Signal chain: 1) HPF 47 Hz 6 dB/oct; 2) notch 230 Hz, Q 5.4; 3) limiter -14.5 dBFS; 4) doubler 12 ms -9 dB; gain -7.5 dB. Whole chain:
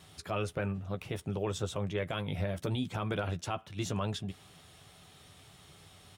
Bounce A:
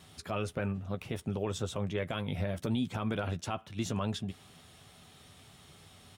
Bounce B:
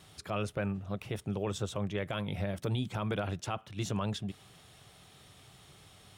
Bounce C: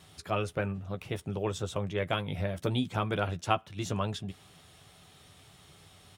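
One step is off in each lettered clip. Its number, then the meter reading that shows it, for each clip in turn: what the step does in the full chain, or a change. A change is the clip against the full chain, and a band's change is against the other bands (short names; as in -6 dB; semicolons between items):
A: 2, 250 Hz band +3.0 dB; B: 4, 250 Hz band +1.5 dB; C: 3, crest factor change +8.0 dB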